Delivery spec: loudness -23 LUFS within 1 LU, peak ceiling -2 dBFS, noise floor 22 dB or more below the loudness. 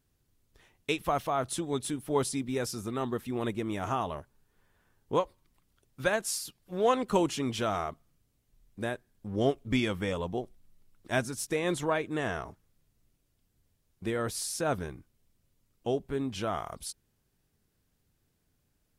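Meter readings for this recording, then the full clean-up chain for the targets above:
loudness -32.0 LUFS; peak -12.0 dBFS; loudness target -23.0 LUFS
-> gain +9 dB

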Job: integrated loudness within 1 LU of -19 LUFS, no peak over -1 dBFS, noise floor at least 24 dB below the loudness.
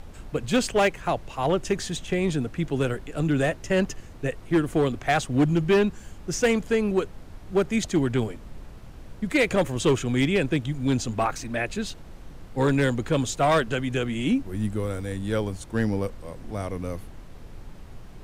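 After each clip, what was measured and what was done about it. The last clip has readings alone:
clipped 1.2%; flat tops at -15.0 dBFS; noise floor -43 dBFS; noise floor target -50 dBFS; loudness -25.5 LUFS; peak -15.0 dBFS; loudness target -19.0 LUFS
-> clip repair -15 dBFS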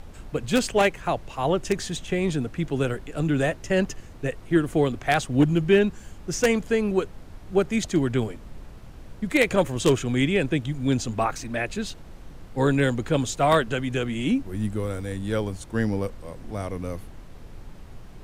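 clipped 0.0%; noise floor -43 dBFS; noise floor target -49 dBFS
-> noise print and reduce 6 dB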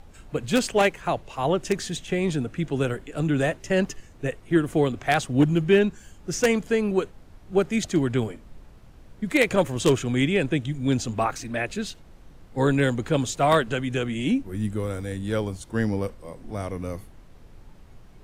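noise floor -49 dBFS; loudness -25.0 LUFS; peak -6.0 dBFS; loudness target -19.0 LUFS
-> gain +6 dB; limiter -1 dBFS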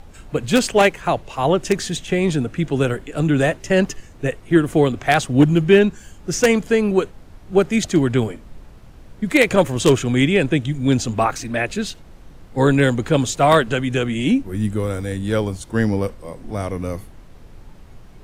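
loudness -19.0 LUFS; peak -1.0 dBFS; noise floor -43 dBFS

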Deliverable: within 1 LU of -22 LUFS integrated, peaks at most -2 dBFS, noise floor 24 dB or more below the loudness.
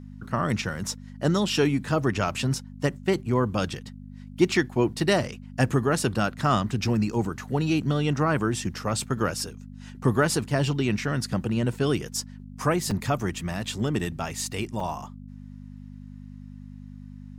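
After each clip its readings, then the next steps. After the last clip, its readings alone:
dropouts 2; longest dropout 3.4 ms; hum 50 Hz; harmonics up to 250 Hz; hum level -40 dBFS; loudness -26.5 LUFS; peak -7.5 dBFS; loudness target -22.0 LUFS
-> interpolate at 12.91/14.8, 3.4 ms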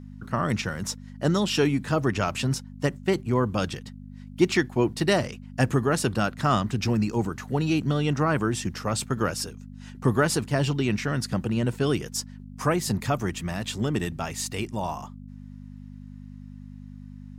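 dropouts 0; hum 50 Hz; harmonics up to 250 Hz; hum level -41 dBFS
-> de-hum 50 Hz, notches 5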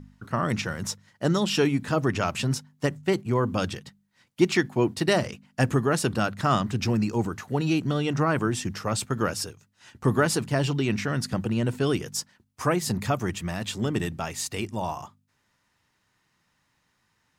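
hum none; loudness -26.5 LUFS; peak -7.5 dBFS; loudness target -22.0 LUFS
-> gain +4.5 dB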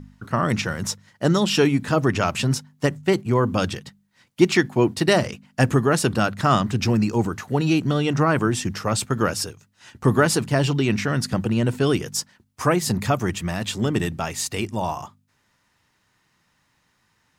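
loudness -22.0 LUFS; peak -3.0 dBFS; noise floor -67 dBFS

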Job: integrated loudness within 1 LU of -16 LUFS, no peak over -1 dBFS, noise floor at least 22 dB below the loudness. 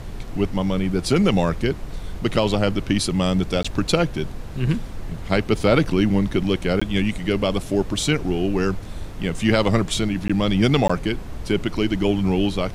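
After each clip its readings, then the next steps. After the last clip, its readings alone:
dropouts 4; longest dropout 15 ms; noise floor -33 dBFS; noise floor target -44 dBFS; loudness -22.0 LUFS; peak -4.0 dBFS; loudness target -16.0 LUFS
-> interpolate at 3.63/6.8/10.28/10.88, 15 ms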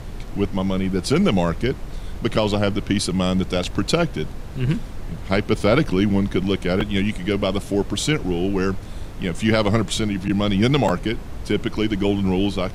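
dropouts 0; noise floor -33 dBFS; noise floor target -44 dBFS
-> noise print and reduce 11 dB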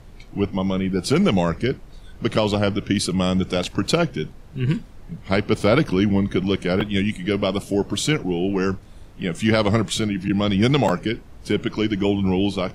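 noise floor -43 dBFS; noise floor target -44 dBFS
-> noise print and reduce 6 dB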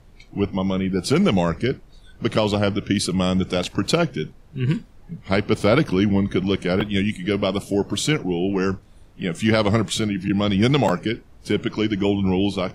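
noise floor -49 dBFS; loudness -22.0 LUFS; peak -4.0 dBFS; loudness target -16.0 LUFS
-> gain +6 dB; limiter -1 dBFS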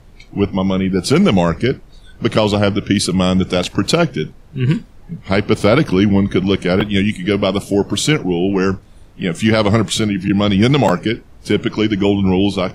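loudness -16.0 LUFS; peak -1.0 dBFS; noise floor -43 dBFS

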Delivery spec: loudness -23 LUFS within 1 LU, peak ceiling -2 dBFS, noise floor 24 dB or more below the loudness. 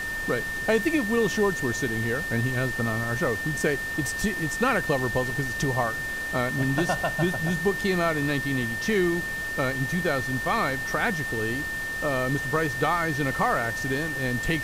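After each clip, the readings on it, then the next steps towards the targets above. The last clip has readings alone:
steady tone 1800 Hz; tone level -29 dBFS; noise floor -31 dBFS; noise floor target -50 dBFS; loudness -25.5 LUFS; peak -9.0 dBFS; loudness target -23.0 LUFS
-> notch 1800 Hz, Q 30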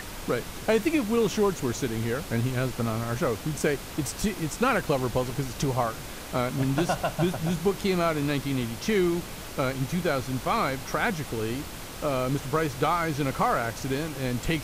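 steady tone none; noise floor -39 dBFS; noise floor target -52 dBFS
-> noise print and reduce 13 dB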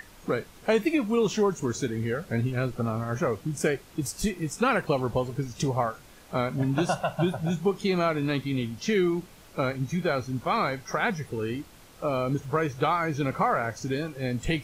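noise floor -51 dBFS; noise floor target -52 dBFS
-> noise print and reduce 6 dB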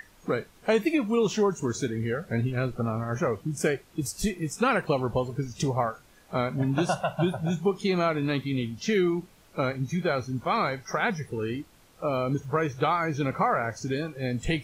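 noise floor -57 dBFS; loudness -28.0 LUFS; peak -10.0 dBFS; loudness target -23.0 LUFS
-> gain +5 dB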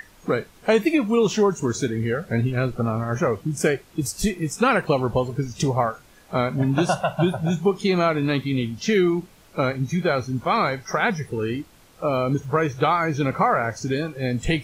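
loudness -23.0 LUFS; peak -5.0 dBFS; noise floor -52 dBFS

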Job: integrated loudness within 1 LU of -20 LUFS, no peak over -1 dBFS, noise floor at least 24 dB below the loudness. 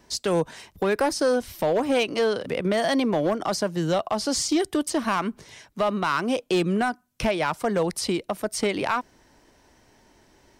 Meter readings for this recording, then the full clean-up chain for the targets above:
clipped 1.0%; flat tops at -16.0 dBFS; loudness -25.0 LUFS; peak -16.0 dBFS; loudness target -20.0 LUFS
-> clip repair -16 dBFS; gain +5 dB

